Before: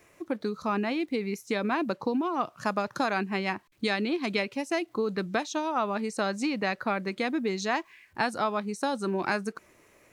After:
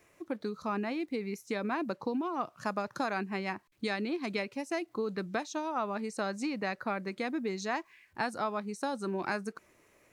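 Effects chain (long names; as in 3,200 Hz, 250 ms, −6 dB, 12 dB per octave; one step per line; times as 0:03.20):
dynamic equaliser 3,200 Hz, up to −5 dB, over −48 dBFS, Q 2.5
level −5 dB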